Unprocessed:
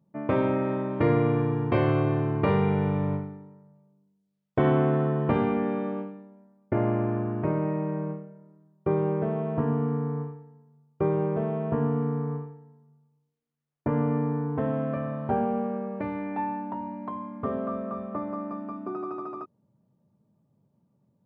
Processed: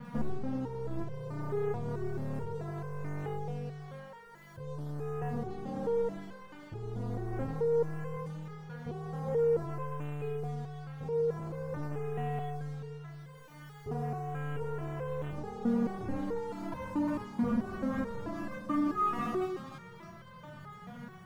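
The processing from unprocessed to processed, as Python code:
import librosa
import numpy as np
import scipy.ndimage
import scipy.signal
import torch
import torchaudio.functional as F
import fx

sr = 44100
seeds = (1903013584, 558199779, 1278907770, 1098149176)

y = x + 0.5 * 10.0 ** (-26.5 / 20.0) * np.diff(np.sign(x), prepend=np.sign(x[:1]))
y = fx.over_compress(y, sr, threshold_db=-34.0, ratio=-1.0)
y = fx.low_shelf_res(y, sr, hz=230.0, db=10.0, q=3.0)
y = fx.doubler(y, sr, ms=28.0, db=-5.5)
y = np.clip(10.0 ** (22.5 / 20.0) * y, -1.0, 1.0) / 10.0 ** (22.5 / 20.0)
y = scipy.signal.savgol_filter(y, 41, 4, mode='constant')
y = fx.tilt_eq(y, sr, slope=-2.5)
y = fx.echo_split(y, sr, split_hz=350.0, low_ms=128, high_ms=306, feedback_pct=52, wet_db=-11)
y = fx.leveller(y, sr, passes=3)
y = fx.resonator_held(y, sr, hz=4.6, low_hz=240.0, high_hz=520.0)
y = y * librosa.db_to_amplitude(2.0)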